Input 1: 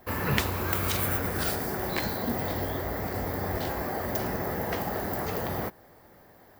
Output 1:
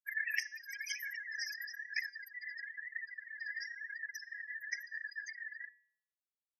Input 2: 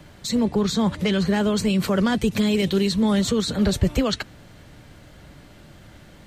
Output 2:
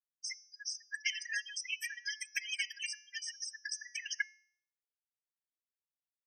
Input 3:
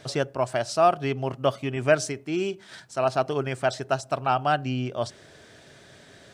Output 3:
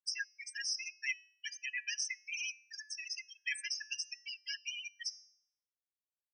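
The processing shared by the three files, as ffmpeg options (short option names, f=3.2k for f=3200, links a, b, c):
-filter_complex "[0:a]aeval=exprs='(tanh(11.2*val(0)+0.15)-tanh(0.15))/11.2':c=same,highshelf=f=4k:t=q:w=1.5:g=9,bandreject=f=3.9k:w=6.6,acrossover=split=750|2600|5400[a][b][c][d];[a]acompressor=threshold=-38dB:ratio=4[e];[b]acompressor=threshold=-37dB:ratio=4[f];[c]acompressor=threshold=-42dB:ratio=4[g];[d]acompressor=threshold=-39dB:ratio=4[h];[e][f][g][h]amix=inputs=4:normalize=0,aresample=32000,aresample=44100,asplit=2[i][j];[j]aecho=0:1:509:0.0708[k];[i][k]amix=inputs=2:normalize=0,flanger=delay=1.5:depth=2.1:regen=29:speed=1:shape=triangular,afftfilt=real='re*gte(hypot(re,im),0.0158)':imag='im*gte(hypot(re,im),0.0158)':win_size=1024:overlap=0.75,bandreject=f=215:t=h:w=4,bandreject=f=430:t=h:w=4,bandreject=f=645:t=h:w=4,bandreject=f=860:t=h:w=4,bandreject=f=1.075k:t=h:w=4,bandreject=f=1.29k:t=h:w=4,bandreject=f=1.505k:t=h:w=4,bandreject=f=1.72k:t=h:w=4,bandreject=f=1.935k:t=h:w=4,bandreject=f=2.15k:t=h:w=4,bandreject=f=2.365k:t=h:w=4,bandreject=f=2.58k:t=h:w=4,bandreject=f=2.795k:t=h:w=4,bandreject=f=3.01k:t=h:w=4,bandreject=f=3.225k:t=h:w=4,bandreject=f=3.44k:t=h:w=4,bandreject=f=3.655k:t=h:w=4,bandreject=f=3.87k:t=h:w=4,bandreject=f=4.085k:t=h:w=4,bandreject=f=4.3k:t=h:w=4,bandreject=f=4.515k:t=h:w=4,bandreject=f=4.73k:t=h:w=4,bandreject=f=4.945k:t=h:w=4,bandreject=f=5.16k:t=h:w=4,bandreject=f=5.375k:t=h:w=4,bandreject=f=5.59k:t=h:w=4,bandreject=f=5.805k:t=h:w=4,bandreject=f=6.02k:t=h:w=4,bandreject=f=6.235k:t=h:w=4,bandreject=f=6.45k:t=h:w=4,bandreject=f=6.665k:t=h:w=4,bandreject=f=6.88k:t=h:w=4,bandreject=f=7.095k:t=h:w=4,acrossover=split=5000[l][m];[m]acompressor=threshold=-51dB:ratio=4:attack=1:release=60[n];[l][n]amix=inputs=2:normalize=0,equalizer=f=760:w=0.59:g=7,afftfilt=real='re*eq(mod(floor(b*sr/1024/1600),2),1)':imag='im*eq(mod(floor(b*sr/1024/1600),2),1)':win_size=1024:overlap=0.75,volume=8.5dB"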